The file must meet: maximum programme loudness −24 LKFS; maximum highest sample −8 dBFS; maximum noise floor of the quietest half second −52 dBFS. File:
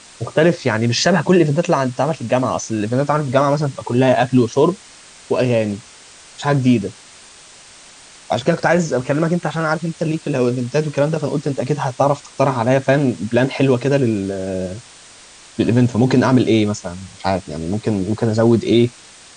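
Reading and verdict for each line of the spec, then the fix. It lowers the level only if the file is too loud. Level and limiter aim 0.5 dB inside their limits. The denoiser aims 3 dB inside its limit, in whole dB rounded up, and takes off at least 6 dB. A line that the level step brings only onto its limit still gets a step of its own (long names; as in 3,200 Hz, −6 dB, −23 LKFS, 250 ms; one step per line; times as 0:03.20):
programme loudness −17.5 LKFS: out of spec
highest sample −2.5 dBFS: out of spec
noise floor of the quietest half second −43 dBFS: out of spec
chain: broadband denoise 6 dB, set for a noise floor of −43 dBFS
level −7 dB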